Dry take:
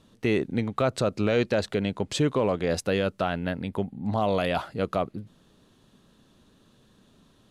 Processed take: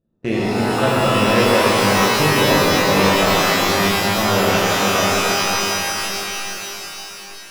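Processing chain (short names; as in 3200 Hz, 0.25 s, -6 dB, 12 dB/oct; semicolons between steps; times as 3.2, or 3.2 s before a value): Wiener smoothing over 41 samples; power-law curve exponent 1.4; shimmer reverb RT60 3.9 s, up +12 st, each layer -2 dB, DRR -8 dB; gain +2.5 dB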